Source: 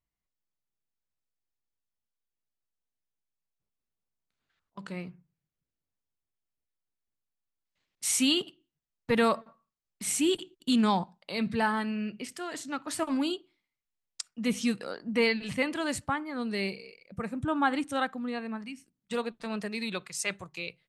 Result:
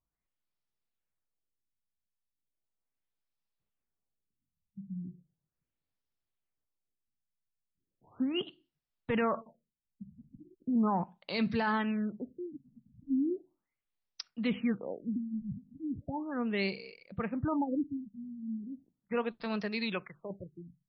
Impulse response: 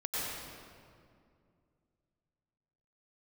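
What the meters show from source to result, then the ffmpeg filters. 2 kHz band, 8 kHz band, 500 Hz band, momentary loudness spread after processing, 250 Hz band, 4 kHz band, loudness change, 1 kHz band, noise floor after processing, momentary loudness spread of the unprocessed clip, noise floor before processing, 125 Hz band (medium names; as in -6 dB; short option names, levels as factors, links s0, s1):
-7.0 dB, under -30 dB, -5.0 dB, 16 LU, -2.5 dB, -10.5 dB, -4.5 dB, -5.5 dB, under -85 dBFS, 14 LU, under -85 dBFS, -1.0 dB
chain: -af "alimiter=limit=0.0794:level=0:latency=1:release=16,afftfilt=real='re*lt(b*sr/1024,220*pow(6000/220,0.5+0.5*sin(2*PI*0.37*pts/sr)))':imag='im*lt(b*sr/1024,220*pow(6000/220,0.5+0.5*sin(2*PI*0.37*pts/sr)))':win_size=1024:overlap=0.75"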